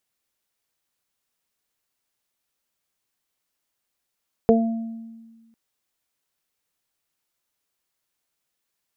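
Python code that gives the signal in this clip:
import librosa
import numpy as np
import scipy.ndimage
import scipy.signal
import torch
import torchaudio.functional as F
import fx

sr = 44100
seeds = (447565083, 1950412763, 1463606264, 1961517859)

y = fx.additive(sr, length_s=1.05, hz=227.0, level_db=-14.5, upper_db=(5.5, -4.0), decay_s=1.53, upper_decays_s=(0.23, 0.71))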